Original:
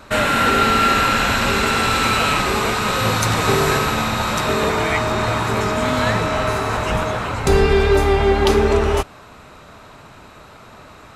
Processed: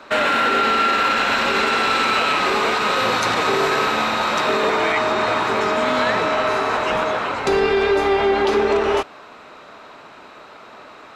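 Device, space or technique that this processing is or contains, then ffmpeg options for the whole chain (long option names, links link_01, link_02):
DJ mixer with the lows and highs turned down: -filter_complex "[0:a]acrossover=split=240 5600:gain=0.1 1 0.178[link_01][link_02][link_03];[link_01][link_02][link_03]amix=inputs=3:normalize=0,alimiter=limit=-11.5dB:level=0:latency=1:release=23,volume=2dB"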